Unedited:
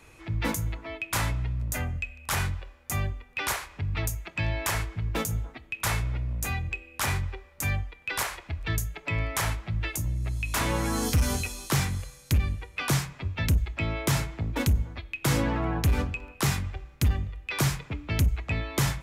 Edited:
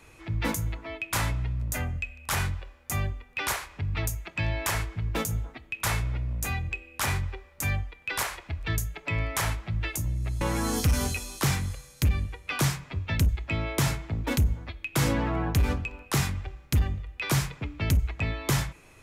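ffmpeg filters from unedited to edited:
-filter_complex "[0:a]asplit=2[s0][s1];[s0]atrim=end=10.412[s2];[s1]atrim=start=10.698[s3];[s2][s3]acrossfade=d=0.004:c1=hsin:c2=hsin"

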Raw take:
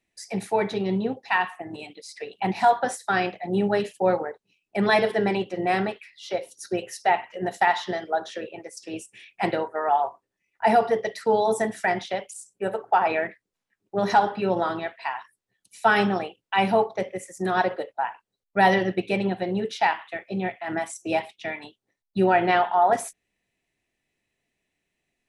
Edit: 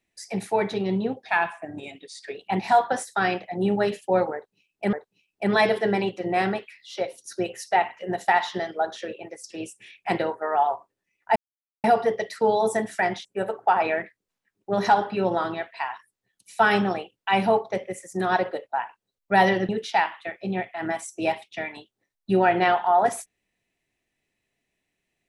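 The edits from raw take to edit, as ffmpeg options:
-filter_complex "[0:a]asplit=7[s0][s1][s2][s3][s4][s5][s6];[s0]atrim=end=1.234[s7];[s1]atrim=start=1.23:end=2.27,asetpts=PTS-STARTPTS,asetrate=41013,aresample=44100,atrim=end_sample=49316,asetpts=PTS-STARTPTS[s8];[s2]atrim=start=2.266:end=4.852[s9];[s3]atrim=start=4.258:end=10.69,asetpts=PTS-STARTPTS,afade=t=out:st=6.428:d=0.004:c=hsin,apad=pad_dur=0.48[s10];[s4]atrim=start=10.69:end=12.102,asetpts=PTS-STARTPTS,afade=t=in:d=0.004:c=hsin[s11];[s5]atrim=start=12.498:end=18.942[s12];[s6]atrim=start=19.558[s13];[s7][s8]acrossfade=d=0.004:c1=hsin:c2=hsin[s14];[s14][s9]acrossfade=d=0.004:c1=hsin:c2=hsin[s15];[s10][s11]concat=n=2:v=0:a=1[s16];[s15][s16]acrossfade=d=0.004:c1=hsin:c2=hsin[s17];[s17][s12]acrossfade=d=0.004:c1=hsin:c2=hsin[s18];[s18][s13]acrossfade=d=0.004:c1=hsin:c2=hsin"

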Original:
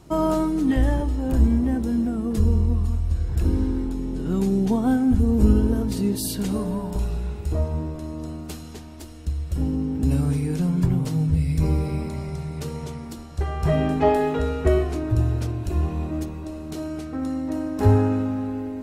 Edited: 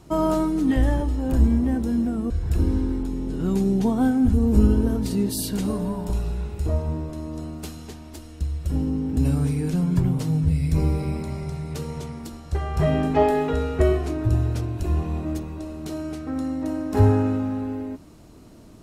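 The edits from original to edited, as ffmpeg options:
-filter_complex "[0:a]asplit=2[s0][s1];[s0]atrim=end=2.302[s2];[s1]atrim=start=3.158[s3];[s2][s3]acrossfade=d=0.004:c1=hsin:c2=hsin"

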